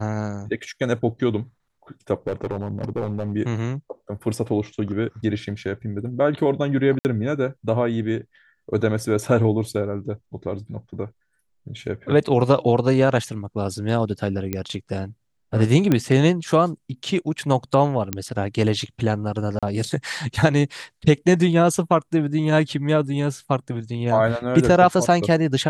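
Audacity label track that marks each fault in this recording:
2.270000	3.330000	clipped -19.5 dBFS
6.990000	7.050000	dropout 59 ms
14.530000	14.530000	pop -11 dBFS
15.920000	15.920000	pop -7 dBFS
18.130000	18.130000	pop -7 dBFS
19.590000	19.630000	dropout 36 ms

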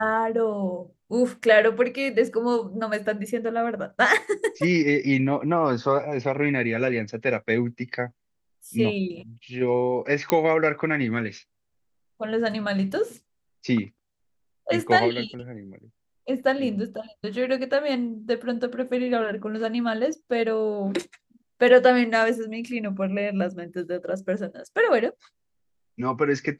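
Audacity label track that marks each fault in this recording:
10.300000	10.300000	pop -6 dBFS

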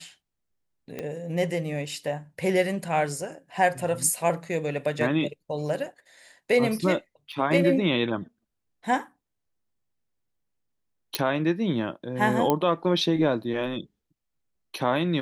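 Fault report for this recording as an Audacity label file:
0.990000	0.990000	pop -19 dBFS
7.320000	7.320000	dropout 4.8 ms
11.150000	11.150000	pop -7 dBFS
12.500000	12.500000	pop -9 dBFS

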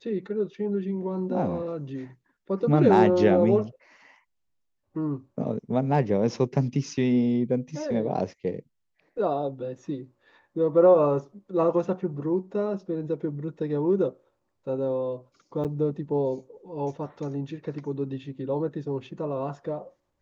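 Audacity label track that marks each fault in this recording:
15.640000	15.650000	dropout 8 ms

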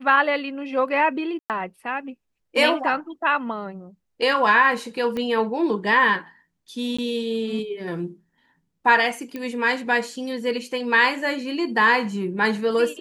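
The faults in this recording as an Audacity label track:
1.390000	1.500000	dropout 108 ms
5.170000	5.170000	pop -17 dBFS
6.970000	6.990000	dropout 15 ms
9.360000	9.360000	pop -18 dBFS

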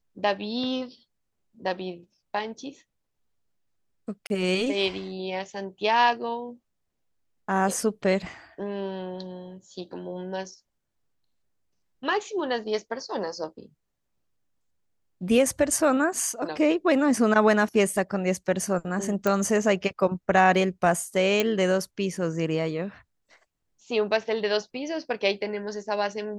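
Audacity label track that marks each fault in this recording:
4.270000	4.300000	dropout 31 ms
19.270000	19.270000	pop -11 dBFS
21.400000	21.400000	pop -9 dBFS

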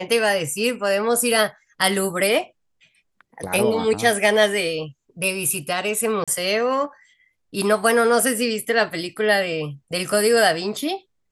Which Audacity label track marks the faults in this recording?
6.240000	6.280000	dropout 36 ms

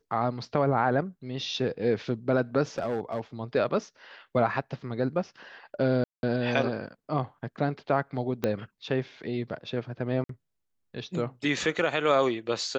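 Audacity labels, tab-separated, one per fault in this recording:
2.780000	3.200000	clipped -24.5 dBFS
6.040000	6.230000	dropout 191 ms
8.440000	8.440000	pop -13 dBFS
10.240000	10.290000	dropout 53 ms

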